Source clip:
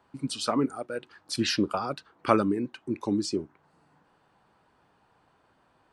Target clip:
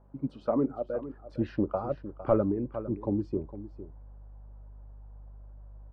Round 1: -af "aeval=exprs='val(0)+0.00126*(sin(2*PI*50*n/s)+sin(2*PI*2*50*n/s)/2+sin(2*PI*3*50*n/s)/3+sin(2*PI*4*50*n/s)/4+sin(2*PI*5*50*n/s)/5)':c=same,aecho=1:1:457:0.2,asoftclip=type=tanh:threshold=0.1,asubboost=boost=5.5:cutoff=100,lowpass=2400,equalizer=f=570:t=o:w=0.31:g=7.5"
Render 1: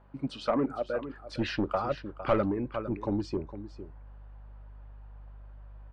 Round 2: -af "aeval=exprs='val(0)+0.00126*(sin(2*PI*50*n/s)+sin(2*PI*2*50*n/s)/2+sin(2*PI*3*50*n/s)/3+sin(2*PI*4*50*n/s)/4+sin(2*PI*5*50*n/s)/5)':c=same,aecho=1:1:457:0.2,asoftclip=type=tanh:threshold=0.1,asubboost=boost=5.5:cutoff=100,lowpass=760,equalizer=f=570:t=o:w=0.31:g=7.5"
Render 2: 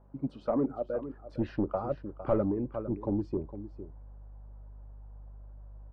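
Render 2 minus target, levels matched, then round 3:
saturation: distortion +7 dB
-af "aeval=exprs='val(0)+0.00126*(sin(2*PI*50*n/s)+sin(2*PI*2*50*n/s)/2+sin(2*PI*3*50*n/s)/3+sin(2*PI*4*50*n/s)/4+sin(2*PI*5*50*n/s)/5)':c=same,aecho=1:1:457:0.2,asoftclip=type=tanh:threshold=0.224,asubboost=boost=5.5:cutoff=100,lowpass=760,equalizer=f=570:t=o:w=0.31:g=7.5"

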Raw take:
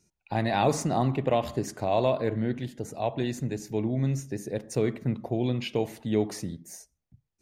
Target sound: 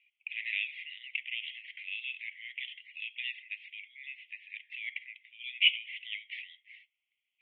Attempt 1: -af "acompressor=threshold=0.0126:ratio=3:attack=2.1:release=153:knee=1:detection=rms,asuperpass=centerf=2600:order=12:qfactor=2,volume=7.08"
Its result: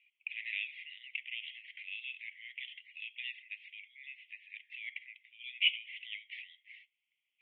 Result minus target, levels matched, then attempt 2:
compression: peak gain reduction +4.5 dB
-af "acompressor=threshold=0.0266:ratio=3:attack=2.1:release=153:knee=1:detection=rms,asuperpass=centerf=2600:order=12:qfactor=2,volume=7.08"

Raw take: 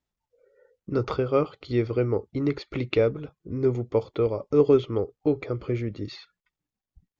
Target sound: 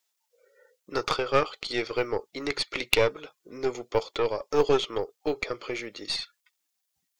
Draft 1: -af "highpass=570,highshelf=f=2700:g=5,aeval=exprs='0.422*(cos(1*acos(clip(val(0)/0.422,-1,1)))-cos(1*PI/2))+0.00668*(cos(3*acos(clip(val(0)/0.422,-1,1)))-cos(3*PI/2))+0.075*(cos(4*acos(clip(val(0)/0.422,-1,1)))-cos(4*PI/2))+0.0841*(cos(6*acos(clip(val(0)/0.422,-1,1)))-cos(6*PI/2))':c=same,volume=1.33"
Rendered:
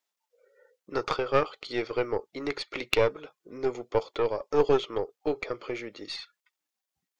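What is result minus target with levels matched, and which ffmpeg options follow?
4 kHz band -4.5 dB
-af "highpass=570,highshelf=f=2700:g=15,aeval=exprs='0.422*(cos(1*acos(clip(val(0)/0.422,-1,1)))-cos(1*PI/2))+0.00668*(cos(3*acos(clip(val(0)/0.422,-1,1)))-cos(3*PI/2))+0.075*(cos(4*acos(clip(val(0)/0.422,-1,1)))-cos(4*PI/2))+0.0841*(cos(6*acos(clip(val(0)/0.422,-1,1)))-cos(6*PI/2))':c=same,volume=1.33"

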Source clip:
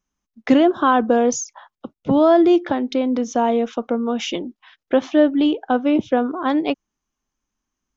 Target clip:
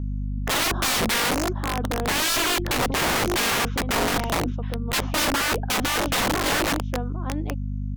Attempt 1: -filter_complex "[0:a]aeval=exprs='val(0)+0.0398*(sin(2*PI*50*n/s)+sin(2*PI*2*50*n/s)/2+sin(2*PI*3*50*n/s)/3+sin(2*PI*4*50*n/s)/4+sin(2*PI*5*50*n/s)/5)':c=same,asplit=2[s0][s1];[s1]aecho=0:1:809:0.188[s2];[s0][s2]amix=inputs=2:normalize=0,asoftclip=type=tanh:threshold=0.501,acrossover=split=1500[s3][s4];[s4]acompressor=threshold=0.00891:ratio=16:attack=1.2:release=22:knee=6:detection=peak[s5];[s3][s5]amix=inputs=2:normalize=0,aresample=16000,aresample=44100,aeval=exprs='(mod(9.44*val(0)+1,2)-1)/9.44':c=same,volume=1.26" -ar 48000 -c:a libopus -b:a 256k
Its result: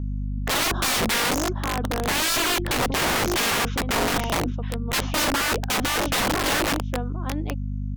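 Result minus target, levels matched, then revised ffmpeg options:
compression: peak gain reduction -10 dB
-filter_complex "[0:a]aeval=exprs='val(0)+0.0398*(sin(2*PI*50*n/s)+sin(2*PI*2*50*n/s)/2+sin(2*PI*3*50*n/s)/3+sin(2*PI*4*50*n/s)/4+sin(2*PI*5*50*n/s)/5)':c=same,asplit=2[s0][s1];[s1]aecho=0:1:809:0.188[s2];[s0][s2]amix=inputs=2:normalize=0,asoftclip=type=tanh:threshold=0.501,acrossover=split=1500[s3][s4];[s4]acompressor=threshold=0.00266:ratio=16:attack=1.2:release=22:knee=6:detection=peak[s5];[s3][s5]amix=inputs=2:normalize=0,aresample=16000,aresample=44100,aeval=exprs='(mod(9.44*val(0)+1,2)-1)/9.44':c=same,volume=1.26" -ar 48000 -c:a libopus -b:a 256k

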